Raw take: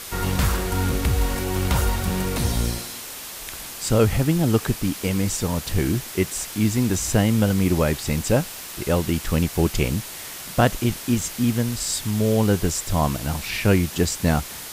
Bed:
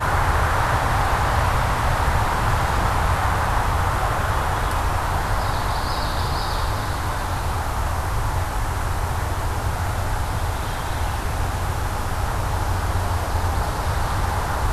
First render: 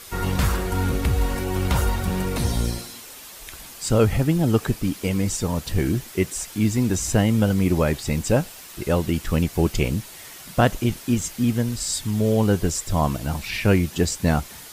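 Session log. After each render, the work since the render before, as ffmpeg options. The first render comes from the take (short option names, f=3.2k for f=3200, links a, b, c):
-af "afftdn=nr=7:nf=-36"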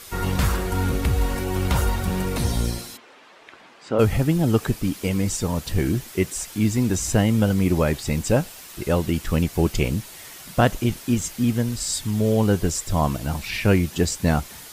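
-filter_complex "[0:a]asplit=3[a][b][c];[a]afade=t=out:st=2.96:d=0.02[d];[b]highpass=270,lowpass=2.2k,afade=t=in:st=2.96:d=0.02,afade=t=out:st=3.98:d=0.02[e];[c]afade=t=in:st=3.98:d=0.02[f];[d][e][f]amix=inputs=3:normalize=0"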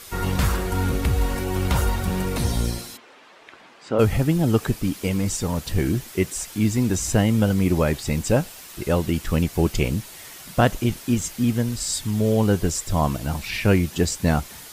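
-filter_complex "[0:a]asettb=1/sr,asplit=3[a][b][c];[a]atrim=end=5.094[d];[b]atrim=start=5.09:end=5.66,asetpts=PTS-STARTPTS,afade=t=in:d=0.004:c=qsin,afade=t=out:st=0.566:d=0.004:c=qsin,volume=16dB,asoftclip=hard,volume=-16dB[e];[c]atrim=start=5.656[f];[d][e]acrossfade=d=0.004:c1=hsin:c2=qsin[g];[g][f]acrossfade=d=0.004:c1=qsin:c2=hsin"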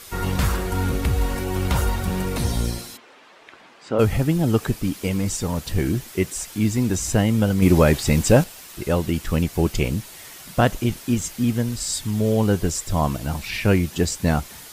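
-filter_complex "[0:a]asettb=1/sr,asplit=3[a][b][c];[a]atrim=end=7.624[d];[b]atrim=start=7.62:end=8.44,asetpts=PTS-STARTPTS,afade=t=in:d=0.004:c=qsin,afade=t=out:st=0.816:d=0.004:c=qsin,acontrast=45[e];[c]atrim=start=8.436[f];[d][e]acrossfade=d=0.004:c1=hsin:c2=qsin[g];[g][f]acrossfade=d=0.004:c1=qsin:c2=hsin"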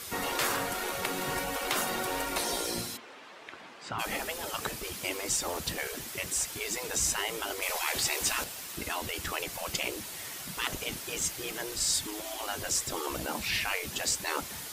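-af "highpass=61,afftfilt=real='re*lt(hypot(re,im),0.158)':imag='im*lt(hypot(re,im),0.158)':win_size=1024:overlap=0.75"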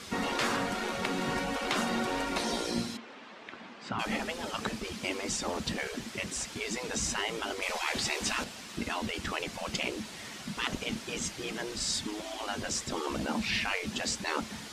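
-af "lowpass=5.9k,equalizer=f=220:w=2.8:g=12"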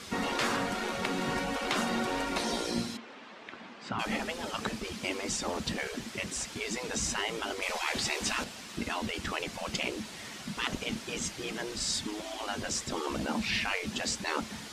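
-af anull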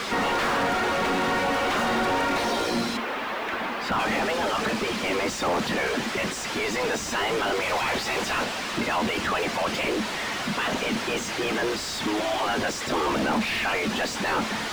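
-filter_complex "[0:a]asplit=2[a][b];[b]highpass=f=720:p=1,volume=32dB,asoftclip=type=tanh:threshold=-15dB[c];[a][c]amix=inputs=2:normalize=0,lowpass=f=1.4k:p=1,volume=-6dB,acrusher=bits=7:mix=0:aa=0.5"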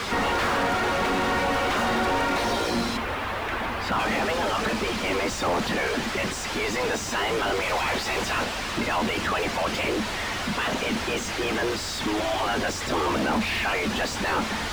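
-filter_complex "[1:a]volume=-17dB[a];[0:a][a]amix=inputs=2:normalize=0"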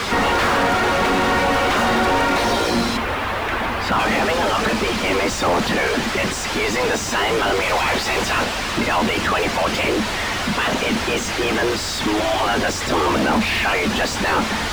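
-af "volume=6.5dB"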